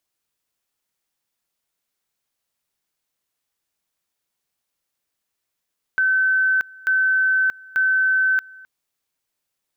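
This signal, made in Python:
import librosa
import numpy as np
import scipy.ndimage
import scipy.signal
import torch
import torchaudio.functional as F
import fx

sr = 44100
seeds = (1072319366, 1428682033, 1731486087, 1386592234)

y = fx.two_level_tone(sr, hz=1530.0, level_db=-15.0, drop_db=24.5, high_s=0.63, low_s=0.26, rounds=3)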